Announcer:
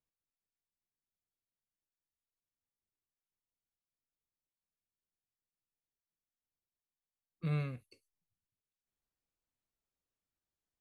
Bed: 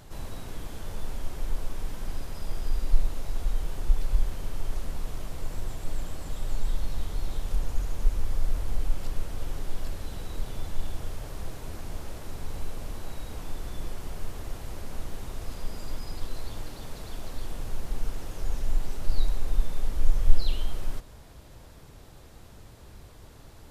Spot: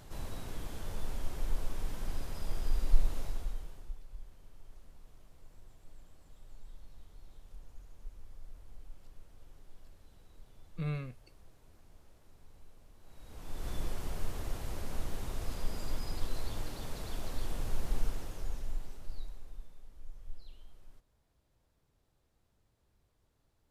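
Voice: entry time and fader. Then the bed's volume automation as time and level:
3.35 s, −1.5 dB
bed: 0:03.22 −3.5 dB
0:04.03 −23 dB
0:12.97 −23 dB
0:13.69 −1.5 dB
0:17.99 −1.5 dB
0:19.84 −25.5 dB

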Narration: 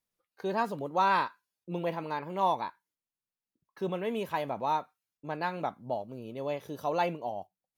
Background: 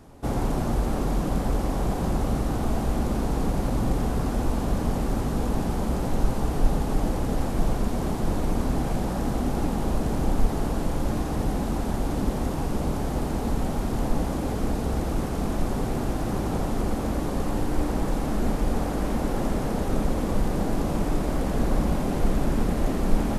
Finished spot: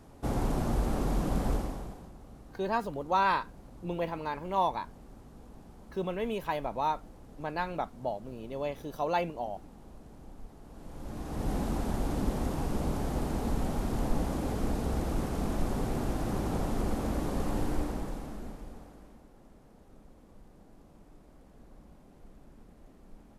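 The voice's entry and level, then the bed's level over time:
2.15 s, −0.5 dB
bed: 0:01.53 −4.5 dB
0:02.13 −25.5 dB
0:10.62 −25.5 dB
0:11.53 −5 dB
0:17.69 −5 dB
0:19.30 −31 dB

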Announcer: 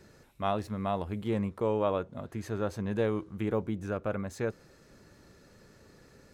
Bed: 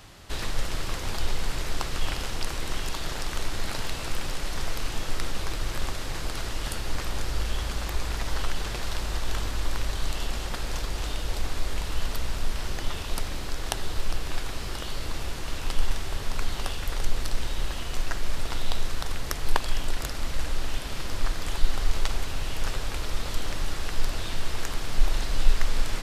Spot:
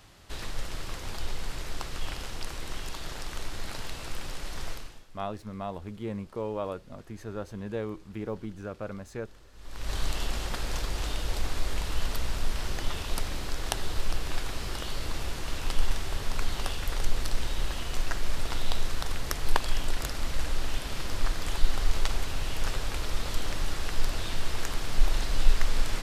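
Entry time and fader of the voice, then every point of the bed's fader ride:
4.75 s, −4.5 dB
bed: 0:04.72 −6 dB
0:05.09 −26.5 dB
0:09.50 −26.5 dB
0:09.93 −1 dB

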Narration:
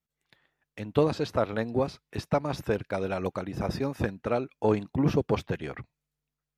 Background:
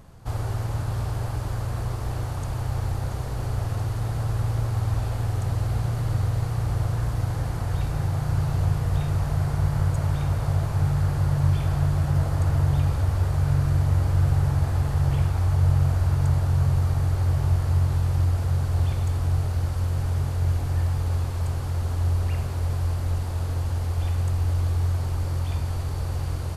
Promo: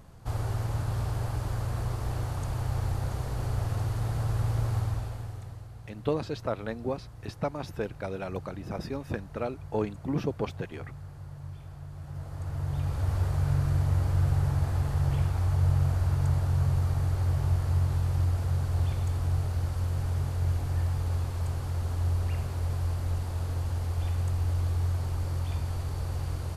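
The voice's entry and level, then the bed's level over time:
5.10 s, −5.0 dB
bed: 0:04.76 −3 dB
0:05.72 −20.5 dB
0:11.87 −20.5 dB
0:13.12 −4.5 dB

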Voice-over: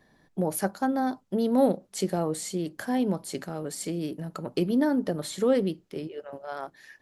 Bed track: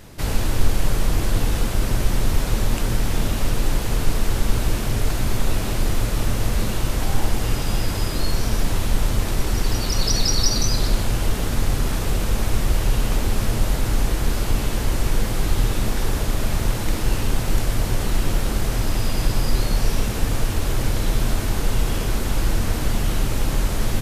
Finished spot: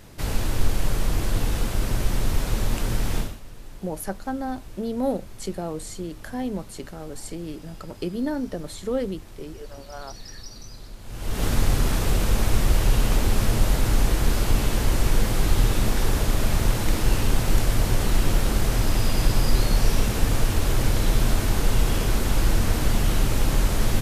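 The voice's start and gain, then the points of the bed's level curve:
3.45 s, −3.0 dB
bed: 0:03.19 −3.5 dB
0:03.41 −21.5 dB
0:10.99 −21.5 dB
0:11.44 0 dB

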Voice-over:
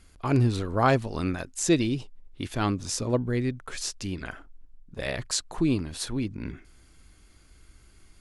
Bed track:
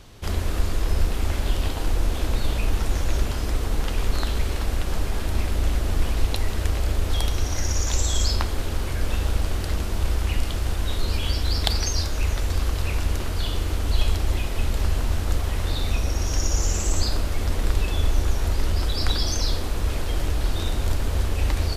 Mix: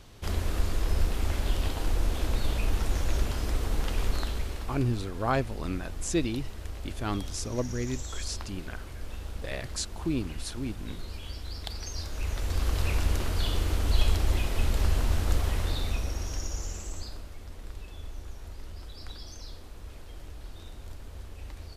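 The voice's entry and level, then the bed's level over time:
4.45 s, −5.5 dB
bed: 0:04.06 −4.5 dB
0:05.02 −15 dB
0:11.70 −15 dB
0:12.78 −2.5 dB
0:15.47 −2.5 dB
0:17.43 −19.5 dB

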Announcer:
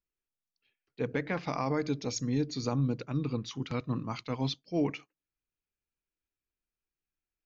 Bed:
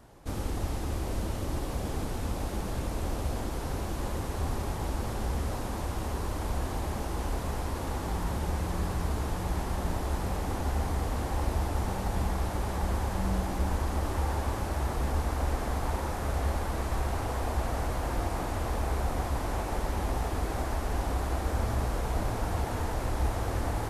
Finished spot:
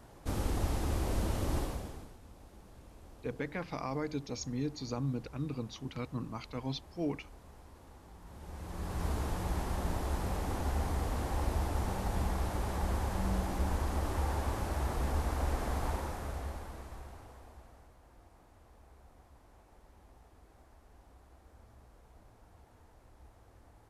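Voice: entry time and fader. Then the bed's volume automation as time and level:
2.25 s, −5.5 dB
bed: 0:01.60 −0.5 dB
0:02.19 −22 dB
0:08.20 −22 dB
0:09.06 −3.5 dB
0:15.87 −3.5 dB
0:17.96 −29 dB

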